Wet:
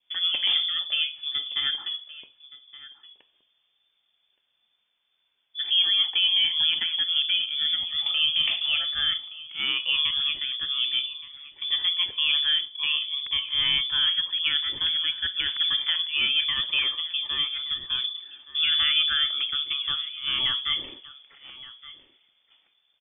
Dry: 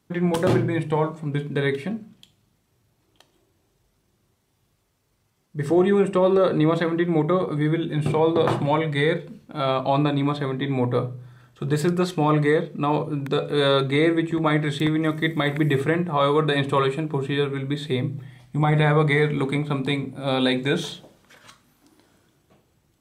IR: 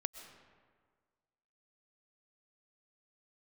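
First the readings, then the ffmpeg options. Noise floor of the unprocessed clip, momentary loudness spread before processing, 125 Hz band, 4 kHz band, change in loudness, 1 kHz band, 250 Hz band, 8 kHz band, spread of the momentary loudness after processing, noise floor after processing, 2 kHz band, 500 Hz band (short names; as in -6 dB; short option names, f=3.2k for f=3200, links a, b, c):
-69 dBFS, 8 LU, under -30 dB, +14.0 dB, -0.5 dB, -17.0 dB, under -30 dB, under -35 dB, 11 LU, -73 dBFS, -2.0 dB, under -30 dB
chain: -af "lowpass=f=3.1k:t=q:w=0.5098,lowpass=f=3.1k:t=q:w=0.6013,lowpass=f=3.1k:t=q:w=0.9,lowpass=f=3.1k:t=q:w=2.563,afreqshift=-3600,aecho=1:1:1171:0.119,adynamicequalizer=threshold=0.01:dfrequency=1500:dqfactor=2.1:tfrequency=1500:tqfactor=2.1:attack=5:release=100:ratio=0.375:range=2.5:mode=cutabove:tftype=bell,volume=-4dB"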